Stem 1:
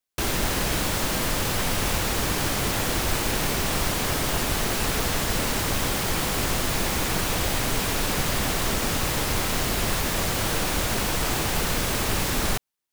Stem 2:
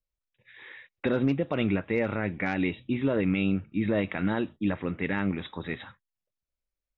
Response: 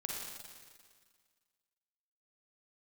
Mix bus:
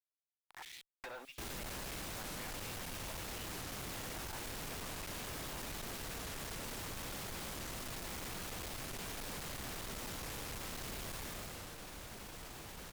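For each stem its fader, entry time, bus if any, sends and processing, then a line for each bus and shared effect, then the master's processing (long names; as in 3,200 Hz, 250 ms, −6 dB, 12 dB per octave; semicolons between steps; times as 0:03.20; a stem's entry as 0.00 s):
0:11.12 −9 dB → 0:11.73 −22 dB, 1.20 s, no send, no processing
+0.5 dB, 0.00 s, no send, hold until the input has moved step −42 dBFS; downward compressor 2 to 1, threshold −43 dBFS, peak gain reduction 12 dB; auto-filter high-pass square 1.6 Hz 850–3,200 Hz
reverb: not used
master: tube saturation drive 42 dB, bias 0.3; wow of a warped record 45 rpm, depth 160 cents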